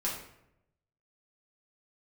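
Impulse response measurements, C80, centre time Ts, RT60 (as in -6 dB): 7.5 dB, 39 ms, 0.80 s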